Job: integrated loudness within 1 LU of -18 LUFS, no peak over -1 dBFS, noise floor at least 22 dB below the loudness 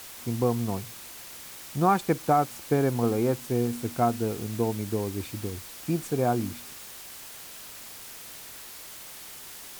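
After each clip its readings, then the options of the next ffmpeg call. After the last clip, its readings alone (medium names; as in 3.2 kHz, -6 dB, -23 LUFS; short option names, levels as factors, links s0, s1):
noise floor -44 dBFS; noise floor target -50 dBFS; loudness -27.5 LUFS; peak level -11.5 dBFS; loudness target -18.0 LUFS
-> -af "afftdn=nr=6:nf=-44"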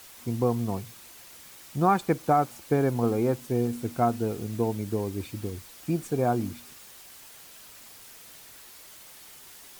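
noise floor -49 dBFS; noise floor target -50 dBFS
-> -af "afftdn=nr=6:nf=-49"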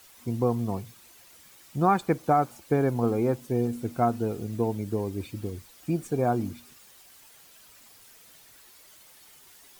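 noise floor -54 dBFS; loudness -28.0 LUFS; peak level -11.5 dBFS; loudness target -18.0 LUFS
-> -af "volume=3.16"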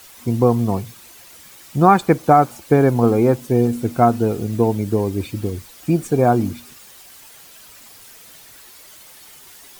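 loudness -18.0 LUFS; peak level -1.5 dBFS; noise floor -44 dBFS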